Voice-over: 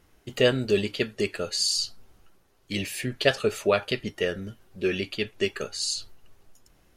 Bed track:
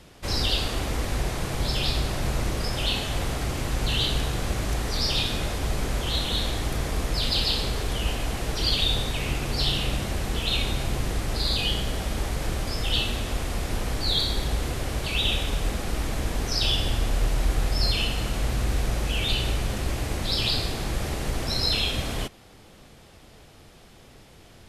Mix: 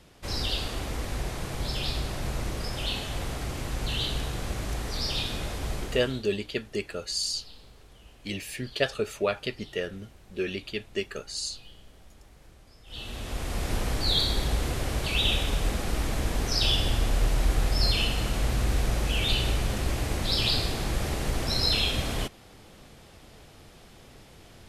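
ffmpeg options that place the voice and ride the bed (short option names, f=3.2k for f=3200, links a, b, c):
-filter_complex "[0:a]adelay=5550,volume=-4.5dB[a];[1:a]volume=20.5dB,afade=t=out:st=5.73:d=0.51:silence=0.0891251,afade=t=in:st=12.86:d=0.85:silence=0.0530884[b];[a][b]amix=inputs=2:normalize=0"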